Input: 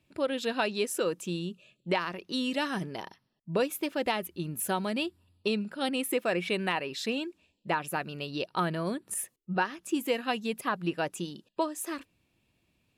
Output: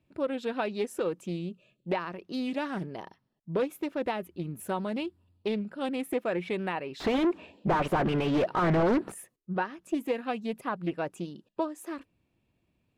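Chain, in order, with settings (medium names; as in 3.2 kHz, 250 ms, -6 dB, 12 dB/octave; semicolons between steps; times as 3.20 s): 7.00–9.12 s: overdrive pedal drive 37 dB, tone 1.2 kHz, clips at -15 dBFS; treble shelf 2.1 kHz -11.5 dB; loudspeaker Doppler distortion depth 0.42 ms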